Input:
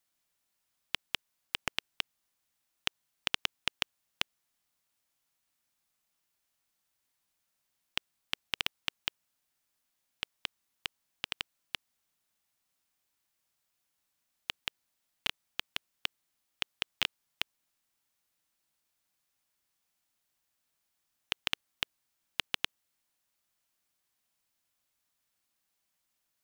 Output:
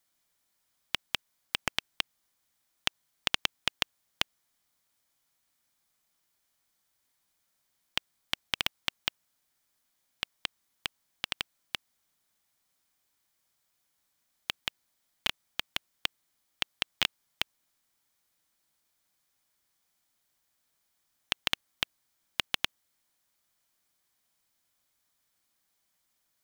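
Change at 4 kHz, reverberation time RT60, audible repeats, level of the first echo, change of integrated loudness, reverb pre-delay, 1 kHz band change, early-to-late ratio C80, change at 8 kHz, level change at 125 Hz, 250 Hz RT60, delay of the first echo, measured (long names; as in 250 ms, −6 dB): +3.5 dB, no reverb audible, no echo audible, no echo audible, +3.0 dB, no reverb audible, +4.0 dB, no reverb audible, +4.0 dB, +4.0 dB, no reverb audible, no echo audible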